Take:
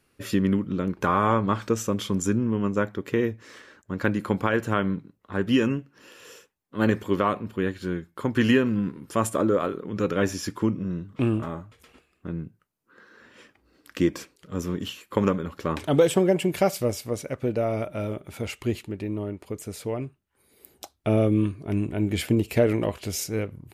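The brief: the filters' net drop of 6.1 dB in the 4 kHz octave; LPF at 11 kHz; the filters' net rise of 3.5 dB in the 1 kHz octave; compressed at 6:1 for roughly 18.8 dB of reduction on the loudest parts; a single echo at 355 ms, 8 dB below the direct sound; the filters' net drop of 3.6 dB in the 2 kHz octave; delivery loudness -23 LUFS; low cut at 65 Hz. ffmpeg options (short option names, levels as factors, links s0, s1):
-af "highpass=65,lowpass=11000,equalizer=f=1000:t=o:g=6.5,equalizer=f=2000:t=o:g=-6.5,equalizer=f=4000:t=o:g=-6.5,acompressor=threshold=0.0178:ratio=6,aecho=1:1:355:0.398,volume=6.68"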